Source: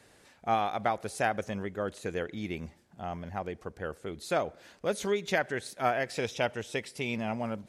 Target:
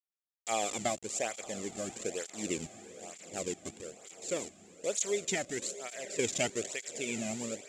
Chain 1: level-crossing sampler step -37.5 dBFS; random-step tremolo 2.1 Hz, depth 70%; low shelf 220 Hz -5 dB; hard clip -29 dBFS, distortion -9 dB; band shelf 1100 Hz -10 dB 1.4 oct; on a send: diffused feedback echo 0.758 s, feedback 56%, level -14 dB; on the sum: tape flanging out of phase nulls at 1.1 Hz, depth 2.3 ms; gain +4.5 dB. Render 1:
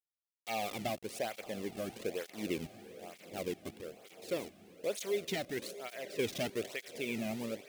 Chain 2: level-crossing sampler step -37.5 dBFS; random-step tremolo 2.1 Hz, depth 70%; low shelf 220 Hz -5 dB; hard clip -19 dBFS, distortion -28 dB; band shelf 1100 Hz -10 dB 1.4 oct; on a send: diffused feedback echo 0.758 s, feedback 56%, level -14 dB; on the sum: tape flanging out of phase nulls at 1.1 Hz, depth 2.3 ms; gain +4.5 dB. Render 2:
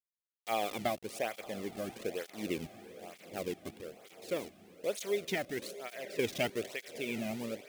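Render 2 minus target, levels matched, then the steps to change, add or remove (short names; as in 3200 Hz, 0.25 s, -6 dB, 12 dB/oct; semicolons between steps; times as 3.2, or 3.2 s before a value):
8000 Hz band -11.5 dB
add after hard clip: synth low-pass 7300 Hz, resonance Q 13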